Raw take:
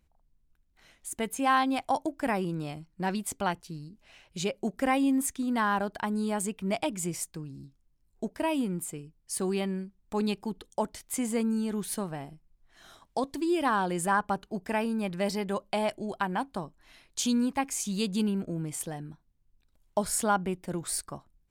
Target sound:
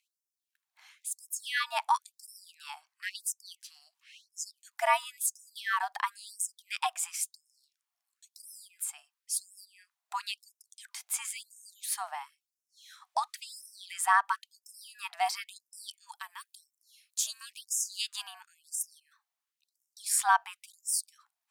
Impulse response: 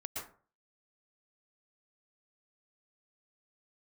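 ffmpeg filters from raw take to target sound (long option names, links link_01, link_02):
-filter_complex "[0:a]asettb=1/sr,asplit=3[link_01][link_02][link_03];[link_01]atrim=end=16.114[link_04];[link_02]atrim=start=16.11:end=17.41,asetpts=PTS-STARTPTS,afade=type=in:duration=0.004:curve=qsin,afade=type=out:start_time=1.296:duration=0.004:curve=qsin,aderivative[link_05];[link_03]atrim=start=17.406[link_06];[link_04][link_05]acrossfade=duration=0.004:curve1=hsin:curve2=qsin[link_07];[link_07][link_06]acrossfade=duration=0.004:curve1=qsin:curve2=hsin,afreqshift=140,afftfilt=real='re*gte(b*sr/1024,620*pow(5200/620,0.5+0.5*sin(2*PI*0.97*pts/sr)))':imag='im*gte(b*sr/1024,620*pow(5200/620,0.5+0.5*sin(2*PI*0.97*pts/sr)))':win_size=1024:overlap=0.75,volume=2.5dB"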